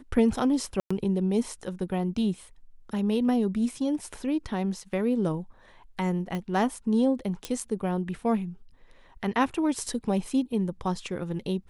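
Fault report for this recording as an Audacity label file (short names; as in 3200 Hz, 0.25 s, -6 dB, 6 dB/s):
0.800000	0.910000	gap 0.105 s
6.350000	6.350000	pop -20 dBFS
7.450000	7.450000	pop -16 dBFS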